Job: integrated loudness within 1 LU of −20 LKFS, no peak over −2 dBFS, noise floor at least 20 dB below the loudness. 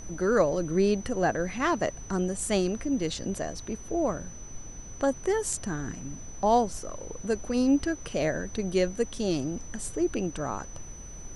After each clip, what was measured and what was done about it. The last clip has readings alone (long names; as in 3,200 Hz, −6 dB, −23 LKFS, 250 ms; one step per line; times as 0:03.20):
interfering tone 6,000 Hz; level of the tone −45 dBFS; background noise floor −43 dBFS; target noise floor −49 dBFS; integrated loudness −28.5 LKFS; sample peak −11.0 dBFS; target loudness −20.0 LKFS
→ notch filter 6,000 Hz, Q 30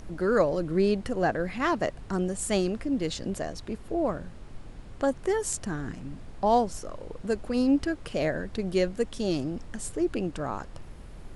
interfering tone none found; background noise floor −44 dBFS; target noise floor −49 dBFS
→ noise reduction from a noise print 6 dB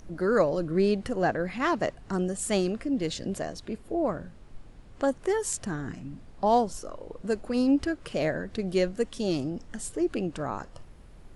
background noise floor −50 dBFS; integrated loudness −29.0 LKFS; sample peak −11.5 dBFS; target loudness −20.0 LKFS
→ level +9 dB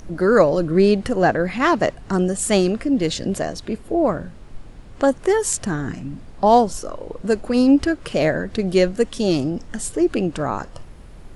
integrated loudness −20.0 LKFS; sample peak −2.5 dBFS; background noise floor −41 dBFS